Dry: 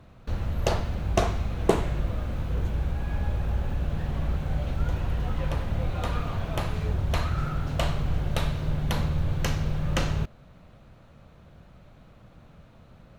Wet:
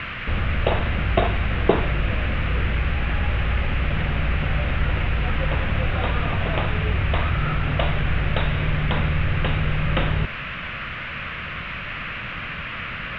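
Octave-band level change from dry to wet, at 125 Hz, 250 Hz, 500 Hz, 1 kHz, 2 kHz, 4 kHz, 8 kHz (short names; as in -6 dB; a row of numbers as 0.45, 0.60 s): +5.0 dB, +5.0 dB, +5.0 dB, +7.0 dB, +14.0 dB, +7.5 dB, under -20 dB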